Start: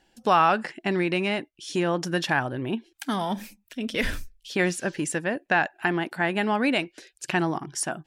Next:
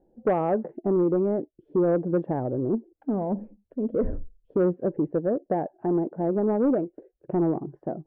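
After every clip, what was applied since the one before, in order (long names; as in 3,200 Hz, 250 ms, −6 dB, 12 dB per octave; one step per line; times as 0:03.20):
transistor ladder low-pass 600 Hz, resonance 45%
in parallel at −6.5 dB: sine wavefolder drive 6 dB, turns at −19.5 dBFS
on the sum: level +2.5 dB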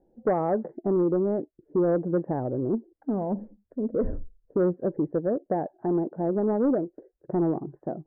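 Butterworth low-pass 2,000 Hz 48 dB per octave
level −1 dB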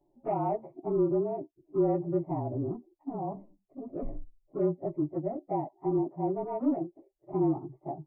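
partials spread apart or drawn together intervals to 108%
phaser with its sweep stopped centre 320 Hz, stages 8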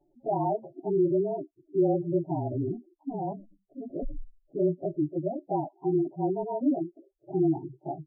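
gate on every frequency bin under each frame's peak −15 dB strong
level +2.5 dB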